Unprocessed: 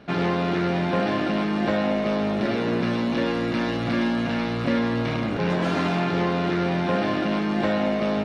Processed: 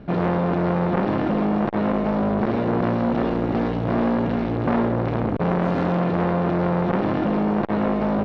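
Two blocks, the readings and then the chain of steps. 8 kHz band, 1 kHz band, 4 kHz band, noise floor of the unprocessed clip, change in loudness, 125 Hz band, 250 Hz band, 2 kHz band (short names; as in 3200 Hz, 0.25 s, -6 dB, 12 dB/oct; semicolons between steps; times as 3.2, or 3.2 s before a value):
n/a, +2.5 dB, -10.0 dB, -26 dBFS, +2.0 dB, +3.5 dB, +2.0 dB, -4.0 dB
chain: tilt -3.5 dB/oct; core saturation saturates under 850 Hz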